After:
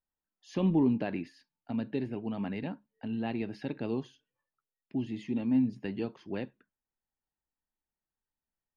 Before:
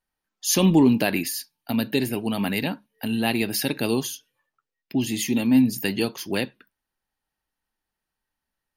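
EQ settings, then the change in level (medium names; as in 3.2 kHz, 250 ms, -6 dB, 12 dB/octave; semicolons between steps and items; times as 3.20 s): tape spacing loss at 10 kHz 40 dB; -8.0 dB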